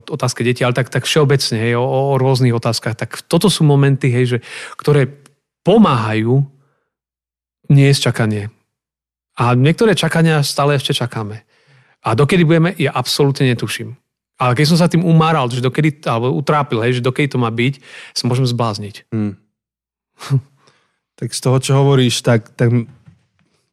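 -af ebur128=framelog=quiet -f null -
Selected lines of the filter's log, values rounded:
Integrated loudness:
  I:         -15.1 LUFS
  Threshold: -25.8 LUFS
Loudness range:
  LRA:         4.6 LU
  Threshold: -36.1 LUFS
  LRA low:   -19.1 LUFS
  LRA high:  -14.5 LUFS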